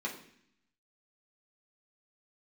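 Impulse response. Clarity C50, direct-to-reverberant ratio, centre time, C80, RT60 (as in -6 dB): 8.5 dB, -3.5 dB, 22 ms, 12.0 dB, 0.65 s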